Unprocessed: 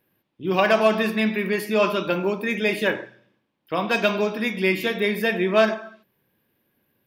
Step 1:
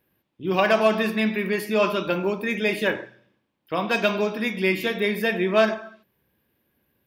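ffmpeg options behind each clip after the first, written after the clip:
-af "equalizer=f=66:w=3.6:g=14,volume=-1dB"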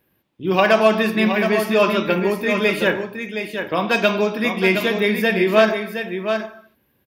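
-af "aecho=1:1:718:0.422,volume=4.5dB"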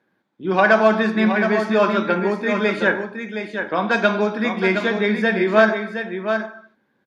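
-af "highpass=190,equalizer=f=210:t=q:w=4:g=5,equalizer=f=830:t=q:w=4:g=4,equalizer=f=1.5k:t=q:w=4:g=8,equalizer=f=2.8k:t=q:w=4:g=-10,equalizer=f=5.3k:t=q:w=4:g=-5,lowpass=f=6.9k:w=0.5412,lowpass=f=6.9k:w=1.3066,volume=-1.5dB"

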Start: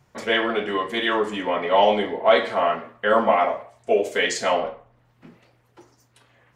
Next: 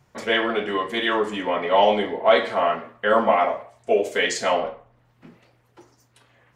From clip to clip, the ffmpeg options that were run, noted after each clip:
-af anull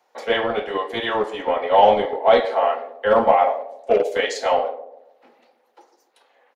-filter_complex "[0:a]equalizer=f=250:t=o:w=0.33:g=6,equalizer=f=500:t=o:w=0.33:g=9,equalizer=f=800:t=o:w=0.33:g=11,equalizer=f=4k:t=o:w=0.33:g=4,equalizer=f=8k:t=o:w=0.33:g=-6,acrossover=split=360|620|1600[a][b][c][d];[a]acrusher=bits=3:mix=0:aa=0.5[e];[b]aecho=1:1:140|280|420|560|700:0.447|0.174|0.0679|0.0265|0.0103[f];[e][f][c][d]amix=inputs=4:normalize=0,volume=-3dB"

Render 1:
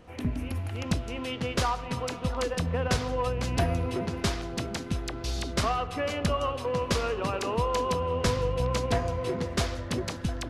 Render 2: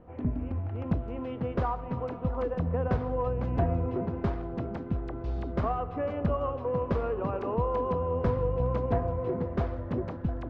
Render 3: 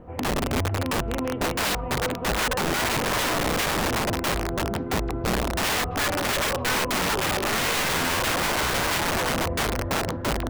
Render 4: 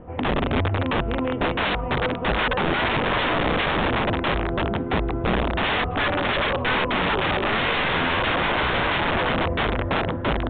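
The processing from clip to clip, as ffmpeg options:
-af "lowpass=1k"
-af "aeval=exprs='(mod(23.7*val(0)+1,2)-1)/23.7':c=same,volume=8dB"
-af "aresample=8000,aresample=44100,volume=3dB"

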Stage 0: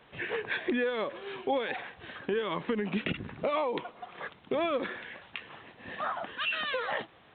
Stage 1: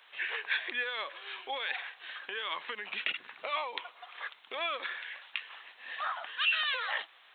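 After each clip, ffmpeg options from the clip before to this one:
-af "highpass=1.1k,highshelf=f=3k:g=8.5"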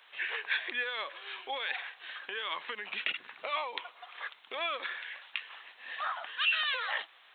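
-af anull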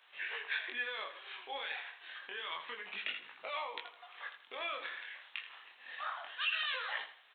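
-af "flanger=delay=18.5:depth=6.9:speed=0.28,aecho=1:1:81|162|243:0.266|0.0851|0.0272,volume=-2.5dB"

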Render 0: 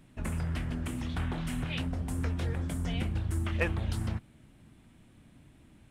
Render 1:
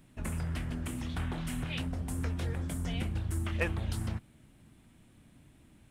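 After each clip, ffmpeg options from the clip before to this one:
-af "highshelf=f=7k:g=6,volume=-2dB"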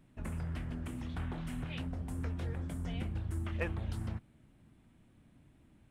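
-af "highshelf=f=3.1k:g=-9,volume=-3.5dB"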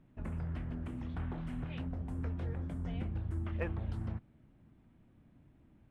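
-af "lowpass=f=1.5k:p=1"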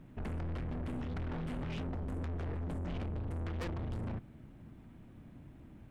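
-af "aeval=exprs='(tanh(224*val(0)+0.3)-tanh(0.3))/224':c=same,volume=10.5dB"

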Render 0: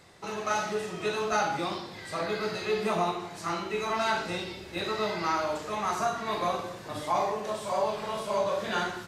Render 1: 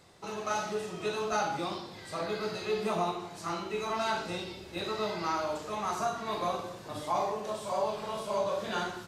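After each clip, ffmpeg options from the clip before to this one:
-af "equalizer=f=1.9k:t=o:w=0.73:g=-4.5,volume=-2.5dB"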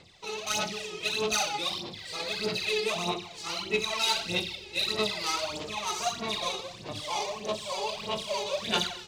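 -af "adynamicsmooth=sensitivity=5:basefreq=2.8k,aexciter=amount=8.1:drive=4.3:freq=2.2k,aphaser=in_gain=1:out_gain=1:delay=2.4:decay=0.68:speed=1.6:type=sinusoidal,volume=-4.5dB"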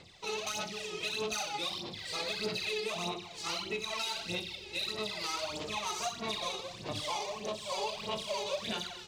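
-af "alimiter=level_in=1dB:limit=-24dB:level=0:latency=1:release=388,volume=-1dB"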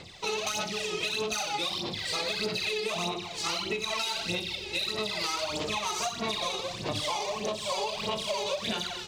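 -af "acompressor=threshold=-36dB:ratio=6,volume=8.5dB"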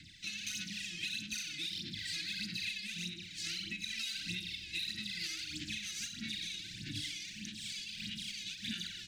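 -af "asuperstop=centerf=700:order=20:qfactor=0.58,volume=-7dB"

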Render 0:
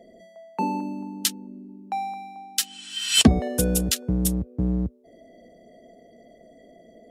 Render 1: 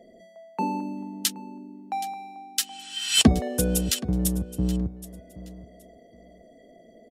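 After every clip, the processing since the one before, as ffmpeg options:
-af "aecho=1:1:773|1546:0.141|0.0297,volume=-1.5dB"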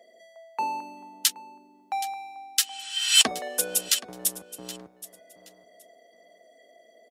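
-filter_complex "[0:a]highpass=820,asplit=2[a][b];[b]asoftclip=type=tanh:threshold=-14.5dB,volume=-5.5dB[c];[a][c]amix=inputs=2:normalize=0"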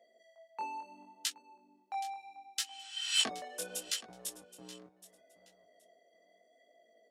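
-af "equalizer=f=14k:w=0.91:g=-11,flanger=delay=17.5:depth=5.6:speed=0.73,volume=-7.5dB"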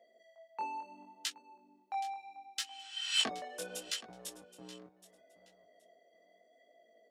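-af "equalizer=f=14k:t=o:w=1.7:g=-8,volume=1dB"

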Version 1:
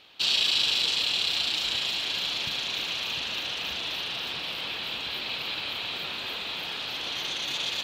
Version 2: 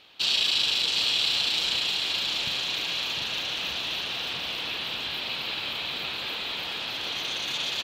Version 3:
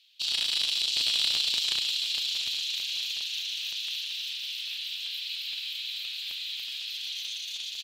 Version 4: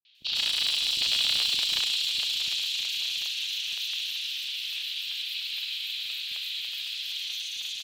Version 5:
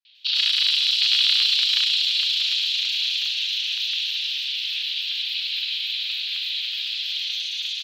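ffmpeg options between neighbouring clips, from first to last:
-af "aecho=1:1:746:0.562"
-filter_complex "[0:a]acrossover=split=2900[a][b];[a]acrusher=bits=3:mix=0:aa=0.5[c];[c][b]amix=inputs=2:normalize=0,dynaudnorm=f=110:g=13:m=4dB,volume=-2.5dB"
-filter_complex "[0:a]acrossover=split=390|4900[a][b][c];[b]adelay=50[d];[c]adelay=150[e];[a][d][e]amix=inputs=3:normalize=0,acrossover=split=240|840|4500[f][g][h][i];[i]asoftclip=type=hard:threshold=-34.5dB[j];[f][g][h][j]amix=inputs=4:normalize=0,volume=3.5dB"
-af "highpass=f=1.3k:w=0.5412,highpass=f=1.3k:w=1.3066,highshelf=f=6.2k:t=q:w=1.5:g=-10,volume=4.5dB"

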